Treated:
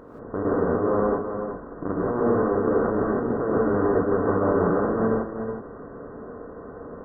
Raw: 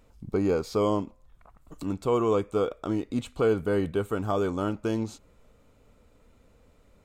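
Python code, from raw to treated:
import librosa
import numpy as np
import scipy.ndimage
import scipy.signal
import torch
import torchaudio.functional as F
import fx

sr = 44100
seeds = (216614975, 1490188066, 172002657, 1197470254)

y = fx.bin_compress(x, sr, power=0.2)
y = fx.low_shelf(y, sr, hz=320.0, db=2.5)
y = fx.level_steps(y, sr, step_db=19)
y = fx.brickwall_lowpass(y, sr, high_hz=2000.0)
y = y + 10.0 ** (-7.5 / 20.0) * np.pad(y, (int(369 * sr / 1000.0), 0))[:len(y)]
y = fx.rev_gated(y, sr, seeds[0], gate_ms=200, shape='rising', drr_db=-5.5)
y = fx.band_squash(y, sr, depth_pct=40, at=(3.74, 4.7))
y = F.gain(torch.from_numpy(y), -8.0).numpy()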